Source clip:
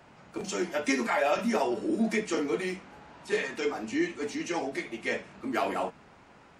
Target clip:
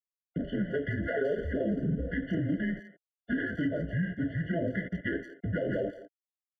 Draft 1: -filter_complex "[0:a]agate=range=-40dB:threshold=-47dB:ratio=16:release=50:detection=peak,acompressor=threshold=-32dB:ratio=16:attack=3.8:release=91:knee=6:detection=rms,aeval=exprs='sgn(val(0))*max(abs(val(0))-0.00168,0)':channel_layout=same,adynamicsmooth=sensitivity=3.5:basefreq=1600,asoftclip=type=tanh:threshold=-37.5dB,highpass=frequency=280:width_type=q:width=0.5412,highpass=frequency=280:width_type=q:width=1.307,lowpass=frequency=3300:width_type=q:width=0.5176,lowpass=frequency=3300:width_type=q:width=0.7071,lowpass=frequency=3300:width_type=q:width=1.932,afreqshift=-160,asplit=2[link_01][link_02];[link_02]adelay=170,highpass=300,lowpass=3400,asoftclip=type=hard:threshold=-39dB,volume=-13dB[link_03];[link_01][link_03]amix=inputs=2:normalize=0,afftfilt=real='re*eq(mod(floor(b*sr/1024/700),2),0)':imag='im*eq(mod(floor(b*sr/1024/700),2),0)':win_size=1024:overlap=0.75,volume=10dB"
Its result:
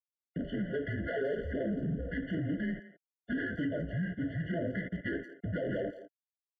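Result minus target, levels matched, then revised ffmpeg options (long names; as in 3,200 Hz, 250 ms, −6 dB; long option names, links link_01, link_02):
soft clipping: distortion +17 dB
-filter_complex "[0:a]agate=range=-40dB:threshold=-47dB:ratio=16:release=50:detection=peak,acompressor=threshold=-32dB:ratio=16:attack=3.8:release=91:knee=6:detection=rms,aeval=exprs='sgn(val(0))*max(abs(val(0))-0.00168,0)':channel_layout=same,adynamicsmooth=sensitivity=3.5:basefreq=1600,asoftclip=type=tanh:threshold=-26dB,highpass=frequency=280:width_type=q:width=0.5412,highpass=frequency=280:width_type=q:width=1.307,lowpass=frequency=3300:width_type=q:width=0.5176,lowpass=frequency=3300:width_type=q:width=0.7071,lowpass=frequency=3300:width_type=q:width=1.932,afreqshift=-160,asplit=2[link_01][link_02];[link_02]adelay=170,highpass=300,lowpass=3400,asoftclip=type=hard:threshold=-39dB,volume=-13dB[link_03];[link_01][link_03]amix=inputs=2:normalize=0,afftfilt=real='re*eq(mod(floor(b*sr/1024/700),2),0)':imag='im*eq(mod(floor(b*sr/1024/700),2),0)':win_size=1024:overlap=0.75,volume=10dB"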